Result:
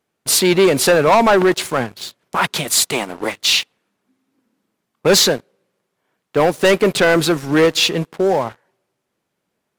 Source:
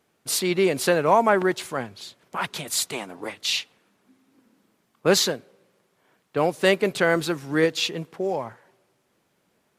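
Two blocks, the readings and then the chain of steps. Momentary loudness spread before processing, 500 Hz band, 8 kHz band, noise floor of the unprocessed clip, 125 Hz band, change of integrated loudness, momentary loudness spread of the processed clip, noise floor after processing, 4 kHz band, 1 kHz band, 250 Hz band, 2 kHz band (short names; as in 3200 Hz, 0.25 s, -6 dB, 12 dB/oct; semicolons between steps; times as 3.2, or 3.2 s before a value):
13 LU, +7.5 dB, +10.0 dB, -70 dBFS, +8.0 dB, +8.0 dB, 11 LU, -75 dBFS, +9.5 dB, +6.5 dB, +8.0 dB, +7.0 dB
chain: sample leveller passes 3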